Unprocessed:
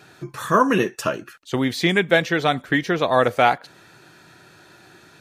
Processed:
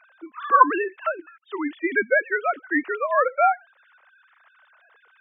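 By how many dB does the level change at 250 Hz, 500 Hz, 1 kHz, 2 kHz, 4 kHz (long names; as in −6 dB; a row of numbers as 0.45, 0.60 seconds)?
−7.5 dB, −4.0 dB, +1.0 dB, −1.0 dB, below −20 dB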